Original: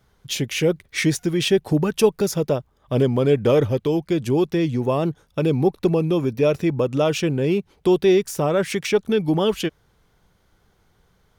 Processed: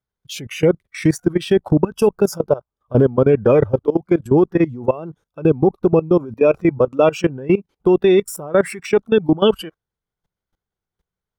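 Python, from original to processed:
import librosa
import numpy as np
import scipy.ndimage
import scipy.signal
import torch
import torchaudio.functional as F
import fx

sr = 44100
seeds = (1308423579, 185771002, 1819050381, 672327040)

y = fx.noise_reduce_blind(x, sr, reduce_db=18)
y = fx.level_steps(y, sr, step_db=19)
y = y * 10.0 ** (8.0 / 20.0)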